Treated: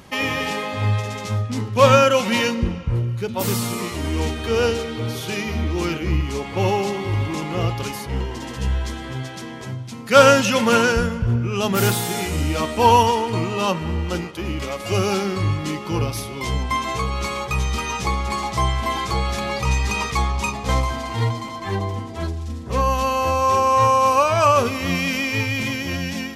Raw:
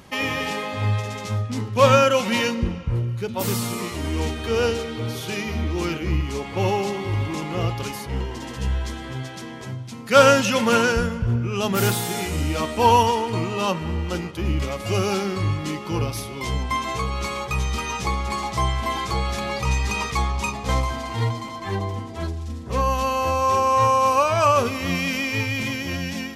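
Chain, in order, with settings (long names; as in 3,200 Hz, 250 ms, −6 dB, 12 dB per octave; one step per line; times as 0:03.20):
0:14.24–0:14.92: parametric band 90 Hz −8.5 dB 2.2 octaves
level +2 dB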